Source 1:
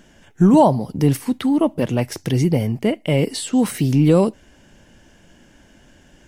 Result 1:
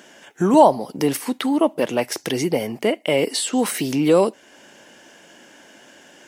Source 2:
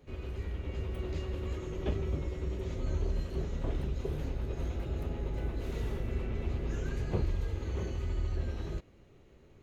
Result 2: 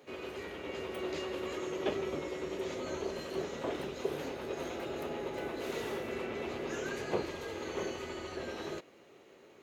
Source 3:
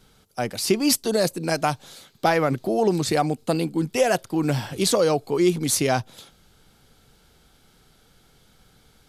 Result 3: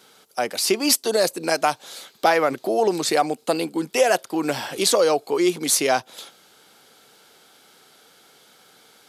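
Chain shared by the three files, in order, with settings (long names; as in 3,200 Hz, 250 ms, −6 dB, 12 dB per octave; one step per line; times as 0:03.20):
high-pass filter 380 Hz 12 dB per octave
in parallel at −1.5 dB: downward compressor, threshold −35 dBFS
on the sum: level +2 dB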